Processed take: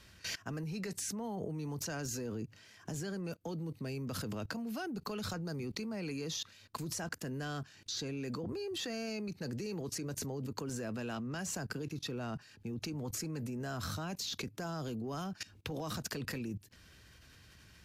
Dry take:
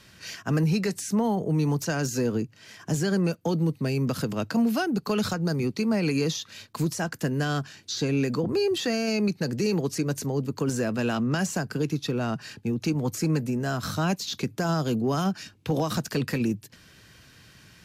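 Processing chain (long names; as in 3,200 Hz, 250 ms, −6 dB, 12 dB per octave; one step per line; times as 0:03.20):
low shelf with overshoot 100 Hz +6.5 dB, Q 1.5
output level in coarse steps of 20 dB
level +1 dB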